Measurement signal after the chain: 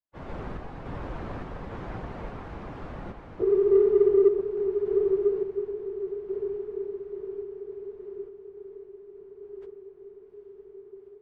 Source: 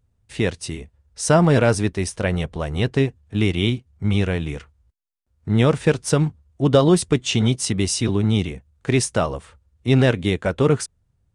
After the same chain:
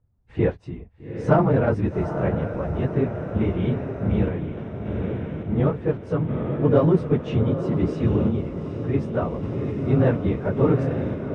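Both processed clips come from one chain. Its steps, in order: phase scrambler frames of 50 ms; LPF 1200 Hz 12 dB/oct; diffused feedback echo 0.826 s, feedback 68%, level -8 dB; in parallel at -10.5 dB: soft clip -17.5 dBFS; on the sum: random-step tremolo 3.5 Hz; gain -1.5 dB

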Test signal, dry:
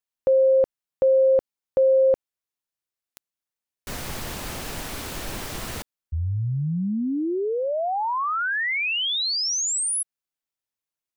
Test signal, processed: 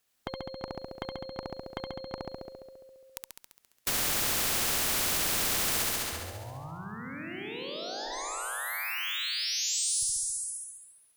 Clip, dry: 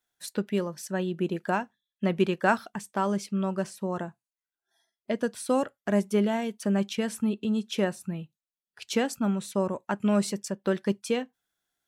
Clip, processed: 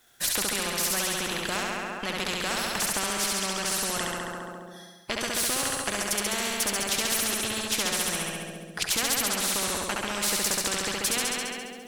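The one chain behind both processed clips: notch 940 Hz, Q 10; in parallel at +0.5 dB: compressor 12:1, threshold -27 dBFS; on the sum: limiter -16 dBFS; added harmonics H 8 -31 dB, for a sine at -16 dBFS; flutter echo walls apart 11.7 m, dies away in 1.2 s; spectral compressor 4:1

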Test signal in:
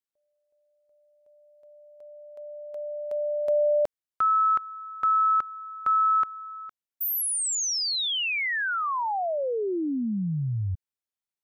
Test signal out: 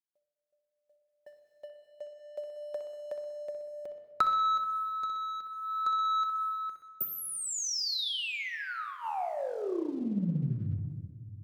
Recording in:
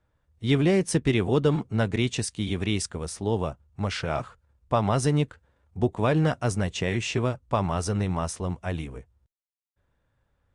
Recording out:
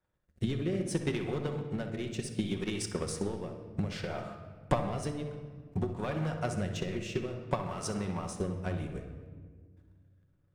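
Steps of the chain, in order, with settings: low shelf 110 Hz -9.5 dB; compressor 4:1, threshold -41 dBFS; darkening echo 63 ms, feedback 62%, low-pass 2700 Hz, level -7 dB; sample leveller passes 2; rotary speaker horn 0.6 Hz; transient shaper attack +11 dB, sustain -5 dB; shoebox room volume 2200 m³, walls mixed, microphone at 1 m; gain -1.5 dB

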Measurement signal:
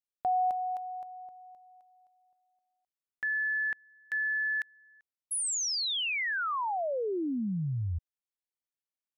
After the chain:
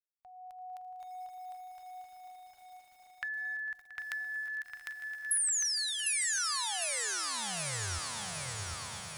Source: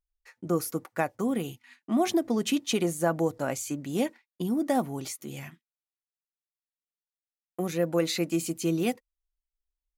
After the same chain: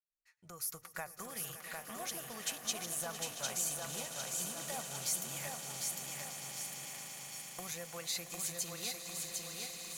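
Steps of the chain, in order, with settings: opening faded in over 1.31 s; compressor 3:1, threshold -42 dBFS; passive tone stack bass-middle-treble 10-0-10; on a send: swelling echo 0.113 s, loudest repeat 8, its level -15.5 dB; on the sum: AGC gain up to 11 dB; dynamic EQ 2800 Hz, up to -7 dB, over -50 dBFS, Q 0.94; lo-fi delay 0.753 s, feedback 55%, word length 10-bit, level -3 dB

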